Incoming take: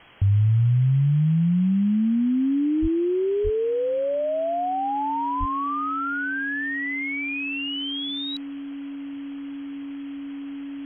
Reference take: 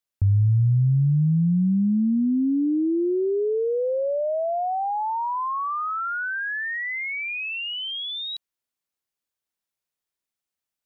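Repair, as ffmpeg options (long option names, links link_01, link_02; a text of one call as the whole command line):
ffmpeg -i in.wav -filter_complex "[0:a]bandreject=frequency=280:width=30,asplit=3[link_01][link_02][link_03];[link_01]afade=type=out:start_time=2.81:duration=0.02[link_04];[link_02]highpass=frequency=140:width=0.5412,highpass=frequency=140:width=1.3066,afade=type=in:start_time=2.81:duration=0.02,afade=type=out:start_time=2.93:duration=0.02[link_05];[link_03]afade=type=in:start_time=2.93:duration=0.02[link_06];[link_04][link_05][link_06]amix=inputs=3:normalize=0,asplit=3[link_07][link_08][link_09];[link_07]afade=type=out:start_time=3.43:duration=0.02[link_10];[link_08]highpass=frequency=140:width=0.5412,highpass=frequency=140:width=1.3066,afade=type=in:start_time=3.43:duration=0.02,afade=type=out:start_time=3.55:duration=0.02[link_11];[link_09]afade=type=in:start_time=3.55:duration=0.02[link_12];[link_10][link_11][link_12]amix=inputs=3:normalize=0,asplit=3[link_13][link_14][link_15];[link_13]afade=type=out:start_time=5.39:duration=0.02[link_16];[link_14]highpass=frequency=140:width=0.5412,highpass=frequency=140:width=1.3066,afade=type=in:start_time=5.39:duration=0.02,afade=type=out:start_time=5.51:duration=0.02[link_17];[link_15]afade=type=in:start_time=5.51:duration=0.02[link_18];[link_16][link_17][link_18]amix=inputs=3:normalize=0,afwtdn=0.0063" out.wav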